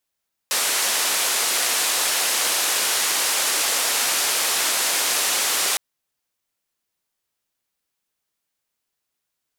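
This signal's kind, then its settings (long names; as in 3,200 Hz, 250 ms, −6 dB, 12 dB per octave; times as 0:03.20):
band-limited noise 430–11,000 Hz, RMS −21.5 dBFS 5.26 s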